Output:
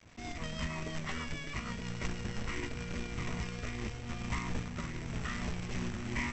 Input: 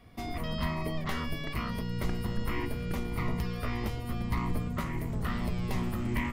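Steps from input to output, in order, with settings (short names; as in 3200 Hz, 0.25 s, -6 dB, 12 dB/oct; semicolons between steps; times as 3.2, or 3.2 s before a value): rotary speaker horn 6.3 Hz, later 1 Hz, at 2.6; companded quantiser 4-bit; rippled Chebyshev low-pass 7900 Hz, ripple 6 dB; gain +1 dB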